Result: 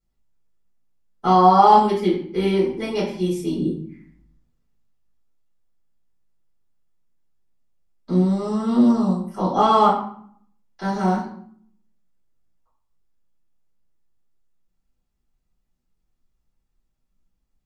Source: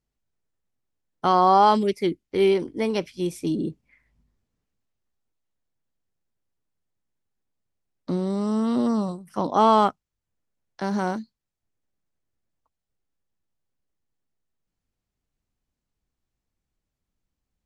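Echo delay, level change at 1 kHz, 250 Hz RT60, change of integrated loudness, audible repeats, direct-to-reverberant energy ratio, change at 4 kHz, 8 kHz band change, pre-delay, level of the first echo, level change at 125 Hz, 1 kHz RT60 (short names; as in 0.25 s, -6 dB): none, +4.0 dB, 0.90 s, +3.5 dB, none, -10.0 dB, +1.5 dB, n/a, 3 ms, none, +7.0 dB, 0.55 s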